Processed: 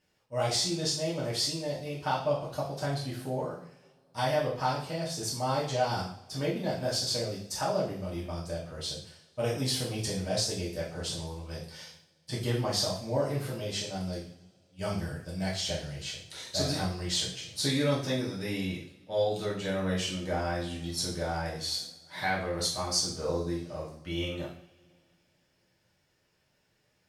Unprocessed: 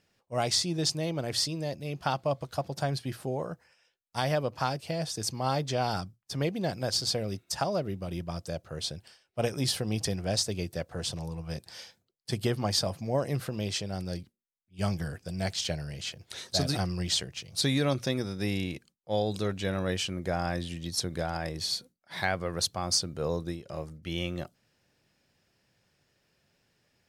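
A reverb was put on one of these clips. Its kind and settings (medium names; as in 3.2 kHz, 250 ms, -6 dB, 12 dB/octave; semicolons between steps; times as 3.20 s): two-slope reverb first 0.52 s, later 2.7 s, from -26 dB, DRR -6.5 dB; trim -7.5 dB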